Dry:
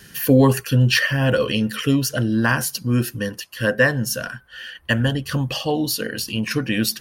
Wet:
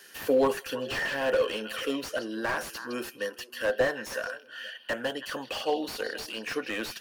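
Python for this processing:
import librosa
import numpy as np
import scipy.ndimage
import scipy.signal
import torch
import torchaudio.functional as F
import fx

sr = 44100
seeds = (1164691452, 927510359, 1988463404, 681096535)

y = fx.ladder_highpass(x, sr, hz=330.0, resonance_pct=20)
y = fx.echo_stepped(y, sr, ms=159, hz=3300.0, octaves=-1.4, feedback_pct=70, wet_db=-12.0)
y = fx.slew_limit(y, sr, full_power_hz=70.0)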